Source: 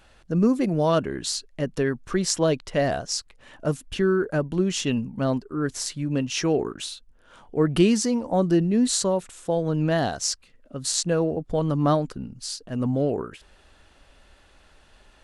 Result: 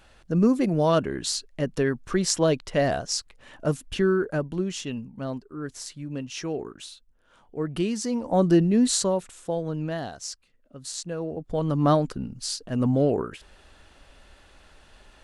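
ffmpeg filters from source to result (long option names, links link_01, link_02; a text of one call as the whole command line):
ffmpeg -i in.wav -af "volume=21.5dB,afade=type=out:start_time=4:duration=0.89:silence=0.398107,afade=type=in:start_time=7.95:duration=0.53:silence=0.316228,afade=type=out:start_time=8.48:duration=1.57:silence=0.266073,afade=type=in:start_time=11.17:duration=0.9:silence=0.266073" out.wav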